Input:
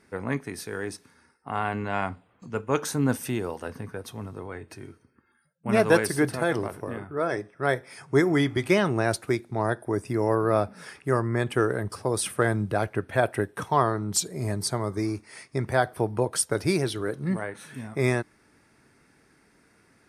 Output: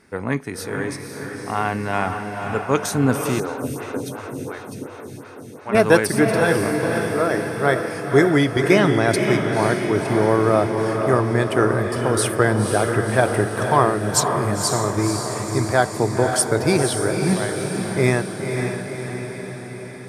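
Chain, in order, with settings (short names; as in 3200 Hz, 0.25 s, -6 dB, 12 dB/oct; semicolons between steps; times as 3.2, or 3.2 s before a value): diffused feedback echo 0.524 s, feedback 62%, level -5 dB; 3.4–5.75 photocell phaser 2.8 Hz; gain +5.5 dB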